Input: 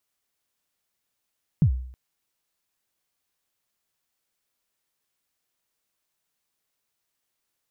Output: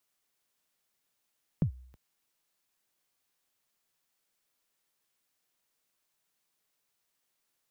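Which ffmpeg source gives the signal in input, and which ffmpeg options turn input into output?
-f lavfi -i "aevalsrc='0.251*pow(10,-3*t/0.61)*sin(2*PI*(180*0.086/log(63/180)*(exp(log(63/180)*min(t,0.086)/0.086)-1)+63*max(t-0.086,0)))':d=0.32:s=44100"
-filter_complex "[0:a]equalizer=f=60:w=2.2:g=-14.5,acrossover=split=340[a][b];[a]acompressor=threshold=-28dB:ratio=6[c];[c][b]amix=inputs=2:normalize=0"

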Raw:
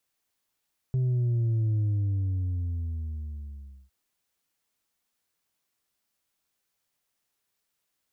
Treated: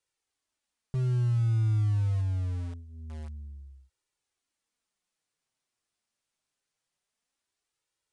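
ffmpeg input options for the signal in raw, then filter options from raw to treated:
-f lavfi -i "aevalsrc='0.0708*clip((2.96-t)/2.13,0,1)*tanh(1.41*sin(2*PI*130*2.96/log(65/130)*(exp(log(65/130)*t/2.96)-1)))/tanh(1.41)':d=2.96:s=44100"
-filter_complex "[0:a]flanger=delay=2.1:depth=6.5:regen=-25:speed=0.25:shape=sinusoidal,asplit=2[a][b];[b]acrusher=bits=5:mix=0:aa=0.000001,volume=-11.5dB[c];[a][c]amix=inputs=2:normalize=0,aresample=22050,aresample=44100"

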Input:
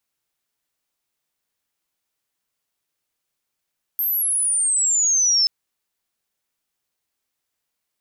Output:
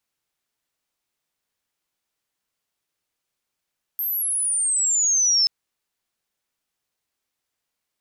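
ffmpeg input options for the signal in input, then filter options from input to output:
-f lavfi -i "aevalsrc='pow(10,(-19+5*t/1.48)/20)*sin(2*PI*13000*1.48/log(5200/13000)*(exp(log(5200/13000)*t/1.48)-1))':d=1.48:s=44100"
-af "highshelf=f=9.6k:g=-5"

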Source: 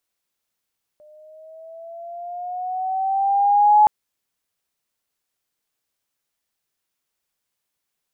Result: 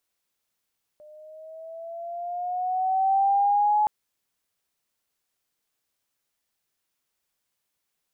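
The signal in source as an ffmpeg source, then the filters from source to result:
-f lavfi -i "aevalsrc='pow(10,(-8.5+37*(t/2.87-1))/20)*sin(2*PI*601*2.87/(6*log(2)/12)*(exp(6*log(2)/12*t/2.87)-1))':d=2.87:s=44100"
-af "alimiter=limit=-18dB:level=0:latency=1:release=13"

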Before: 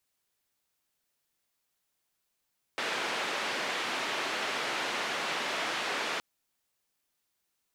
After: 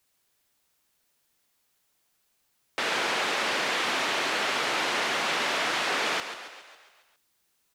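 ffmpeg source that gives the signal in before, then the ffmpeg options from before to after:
-f lavfi -i "anoisesrc=c=white:d=3.42:r=44100:seed=1,highpass=f=300,lowpass=f=2700,volume=-19dB"
-filter_complex "[0:a]asplit=2[a][b];[b]alimiter=level_in=4.5dB:limit=-24dB:level=0:latency=1,volume=-4.5dB,volume=2dB[c];[a][c]amix=inputs=2:normalize=0,asplit=8[d][e][f][g][h][i][j][k];[e]adelay=137,afreqshift=32,volume=-10.5dB[l];[f]adelay=274,afreqshift=64,volume=-15.2dB[m];[g]adelay=411,afreqshift=96,volume=-20dB[n];[h]adelay=548,afreqshift=128,volume=-24.7dB[o];[i]adelay=685,afreqshift=160,volume=-29.4dB[p];[j]adelay=822,afreqshift=192,volume=-34.2dB[q];[k]adelay=959,afreqshift=224,volume=-38.9dB[r];[d][l][m][n][o][p][q][r]amix=inputs=8:normalize=0"

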